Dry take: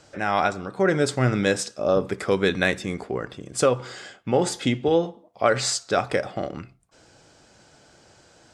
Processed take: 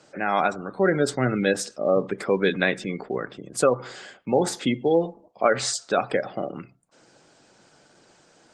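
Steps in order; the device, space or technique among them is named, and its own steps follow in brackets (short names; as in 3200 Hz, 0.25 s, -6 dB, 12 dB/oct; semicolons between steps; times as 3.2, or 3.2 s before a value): 2.93–4.61 dynamic EQ 1600 Hz, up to +3 dB, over -37 dBFS, Q 1.5; noise-suppressed video call (HPF 140 Hz 24 dB/oct; spectral gate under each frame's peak -25 dB strong; Opus 20 kbps 48000 Hz)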